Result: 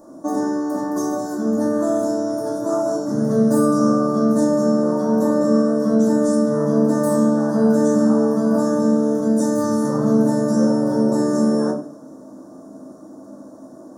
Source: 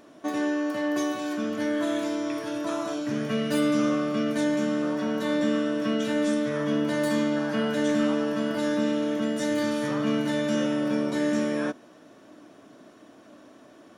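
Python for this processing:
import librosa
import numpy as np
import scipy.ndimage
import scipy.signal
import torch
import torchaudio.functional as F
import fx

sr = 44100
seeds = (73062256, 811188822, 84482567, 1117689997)

y = scipy.signal.sosfilt(scipy.signal.cheby1(2, 1.0, [890.0, 6900.0], 'bandstop', fs=sr, output='sos'), x)
y = fx.low_shelf(y, sr, hz=63.0, db=-8.5)
y = fx.echo_feedback(y, sr, ms=73, feedback_pct=57, wet_db=-18.0)
y = fx.room_shoebox(y, sr, seeds[0], volume_m3=240.0, walls='furnished', distance_m=2.4)
y = y * librosa.db_to_amplitude(5.5)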